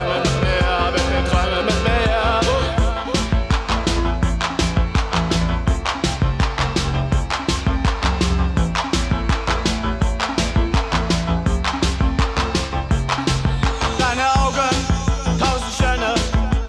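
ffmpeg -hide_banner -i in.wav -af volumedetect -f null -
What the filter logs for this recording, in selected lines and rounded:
mean_volume: -18.4 dB
max_volume: -5.6 dB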